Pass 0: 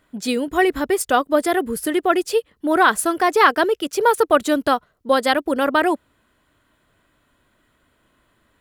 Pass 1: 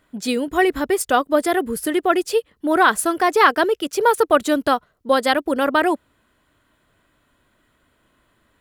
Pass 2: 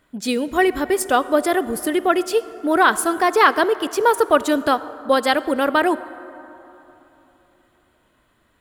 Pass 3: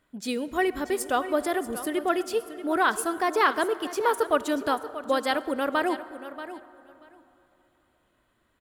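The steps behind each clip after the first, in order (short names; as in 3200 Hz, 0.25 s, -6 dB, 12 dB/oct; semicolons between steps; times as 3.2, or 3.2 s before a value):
nothing audible
reverb RT60 3.5 s, pre-delay 33 ms, DRR 15.5 dB
feedback echo 0.634 s, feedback 15%, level -13 dB; gain -8 dB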